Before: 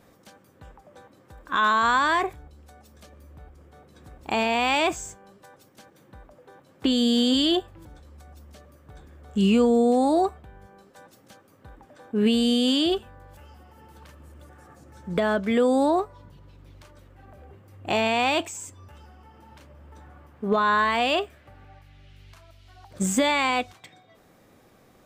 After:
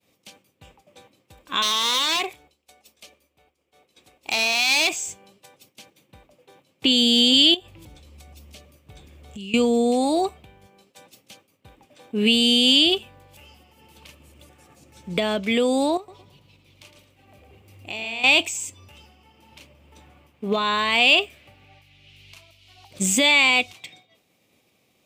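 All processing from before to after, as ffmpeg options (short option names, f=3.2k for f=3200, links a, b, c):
-filter_complex "[0:a]asettb=1/sr,asplit=3[a][b][c];[a]atrim=end=1.624[d];[b]atrim=start=1.62:end=5.08,asetpts=PTS-STARTPTS,afade=t=in:d=0.004:c=qsin,afade=t=out:st=3.456:d=0.004:c=qsin,bass=f=250:g=-13,treble=f=4k:g=0,aeval=exprs='0.1*(abs(mod(val(0)/0.1+3,4)-2)-1)':c=same[e];[c]atrim=start=5.076[f];[d][e]acrossfade=d=0.004:c1=hsin:c2=qsin[g];[g][f]acrossfade=d=0.004:c1=qsin:c2=hsin,asettb=1/sr,asplit=3[h][i][j];[h]atrim=end=7.544[k];[i]atrim=start=7.54:end=9.54,asetpts=PTS-STARTPTS,afade=t=in:d=0.004:c=qsin,afade=t=out:st=1.996:d=0.004:c=qsin,lowshelf=f=73:g=9.5,acompressor=threshold=-34dB:ratio=10:attack=3.2:release=140:knee=1:detection=peak[l];[j]atrim=start=9.536[m];[k][l]acrossfade=d=0.004:c1=hsin:c2=qsin[n];[n][m]acrossfade=d=0.004:c1=qsin:c2=hsin,asettb=1/sr,asplit=3[o][p][q];[o]atrim=end=15.974[r];[p]atrim=start=15.97:end=18.24,asetpts=PTS-STARTPTS,afade=t=in:d=0.004:c=qsin,afade=t=out:st=2.266:d=0.004:c=qsin,acompressor=threshold=-45dB:ratio=2:attack=3.2:release=140:knee=1:detection=peak,aecho=1:1:111|222|333|444:0.447|0.156|0.0547|0.0192,atrim=end_sample=100107[s];[q]atrim=start=18.236[t];[r][s]acrossfade=d=0.004:c1=hsin:c2=qsin[u];[u][t]acrossfade=d=0.004:c1=qsin:c2=hsin,highpass=83,highshelf=f=2k:t=q:w=3:g=7,agate=range=-33dB:threshold=-47dB:ratio=3:detection=peak"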